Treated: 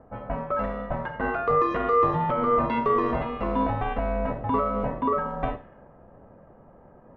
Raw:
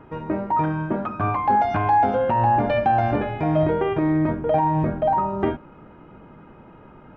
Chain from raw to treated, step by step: ring modulator 360 Hz; Schroeder reverb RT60 0.34 s, combs from 26 ms, DRR 11.5 dB; low-pass opened by the level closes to 820 Hz, open at -21.5 dBFS; gain -2 dB

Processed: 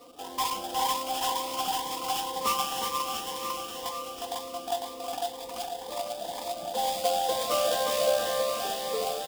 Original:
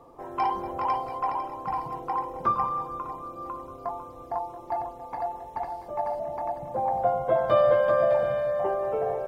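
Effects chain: HPF 290 Hz 6 dB/oct; comb 4 ms, depth 93%; in parallel at +0.5 dB: compressor, threshold -35 dBFS, peak gain reduction 17.5 dB; on the sum: sample-rate reducer 4200 Hz, jitter 20%; bouncing-ball echo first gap 0.36 s, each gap 0.9×, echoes 5; cascading phaser rising 2 Hz; gain -5.5 dB

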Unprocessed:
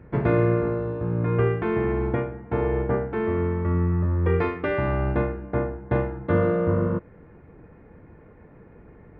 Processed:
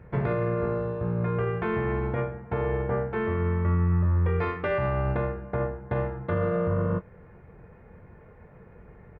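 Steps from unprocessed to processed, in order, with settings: bell 290 Hz -13 dB 0.43 oct; limiter -18.5 dBFS, peak gain reduction 8 dB; doubler 22 ms -11 dB

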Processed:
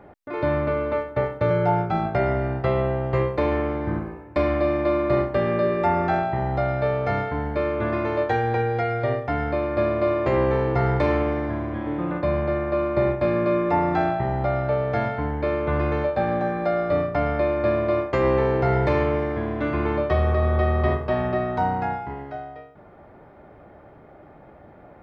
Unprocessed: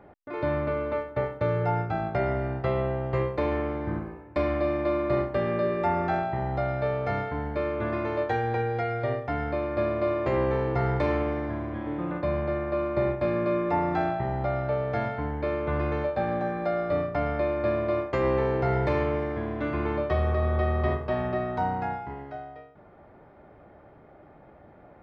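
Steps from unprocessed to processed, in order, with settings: 1.5–2.06 comb 5.4 ms; gain +4.5 dB

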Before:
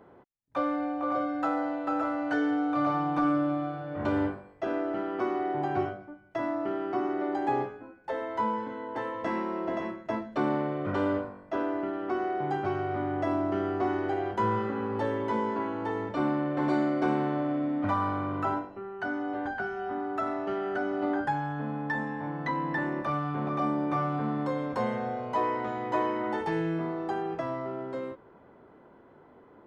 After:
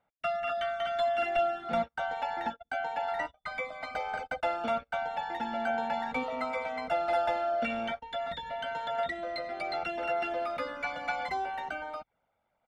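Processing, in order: reverb removal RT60 0.53 s; gate -43 dBFS, range -20 dB; tilt -3 dB/oct; comb 3.3 ms, depth 58%; speed mistake 33 rpm record played at 78 rpm; gain -7.5 dB

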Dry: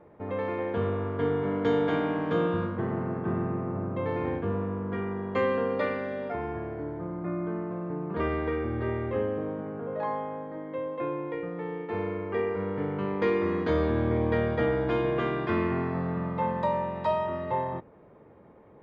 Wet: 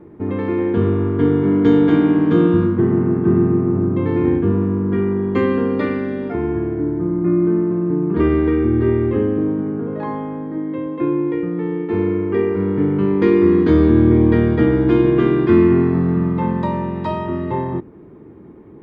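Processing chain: resonant low shelf 440 Hz +7 dB, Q 3; gain +5.5 dB

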